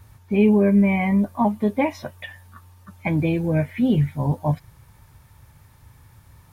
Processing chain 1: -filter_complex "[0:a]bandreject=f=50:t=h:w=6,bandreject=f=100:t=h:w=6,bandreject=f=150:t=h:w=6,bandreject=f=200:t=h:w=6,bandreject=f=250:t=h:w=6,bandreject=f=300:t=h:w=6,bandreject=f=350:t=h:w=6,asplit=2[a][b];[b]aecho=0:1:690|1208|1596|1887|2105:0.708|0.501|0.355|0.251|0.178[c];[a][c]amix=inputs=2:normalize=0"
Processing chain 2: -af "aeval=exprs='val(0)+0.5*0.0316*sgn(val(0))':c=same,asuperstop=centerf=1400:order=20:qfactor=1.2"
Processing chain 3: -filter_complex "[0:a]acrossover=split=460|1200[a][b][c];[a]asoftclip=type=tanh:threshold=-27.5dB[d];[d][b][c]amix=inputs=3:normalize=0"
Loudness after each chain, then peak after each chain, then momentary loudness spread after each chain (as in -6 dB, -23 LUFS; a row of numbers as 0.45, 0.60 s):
-21.5, -20.0, -27.5 LUFS; -7.0, -7.0, -12.0 dBFS; 9, 19, 14 LU